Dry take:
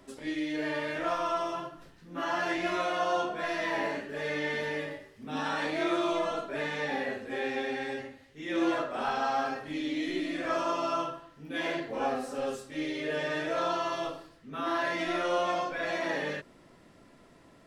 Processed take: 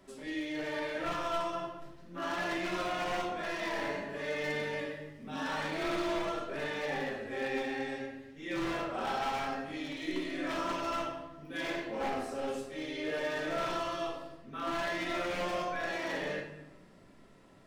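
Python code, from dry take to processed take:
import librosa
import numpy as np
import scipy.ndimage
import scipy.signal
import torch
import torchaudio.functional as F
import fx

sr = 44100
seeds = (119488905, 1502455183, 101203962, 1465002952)

y = 10.0 ** (-26.0 / 20.0) * (np.abs((x / 10.0 ** (-26.0 / 20.0) + 3.0) % 4.0 - 2.0) - 1.0)
y = fx.room_shoebox(y, sr, seeds[0], volume_m3=380.0, walls='mixed', distance_m=1.1)
y = y * 10.0 ** (-5.0 / 20.0)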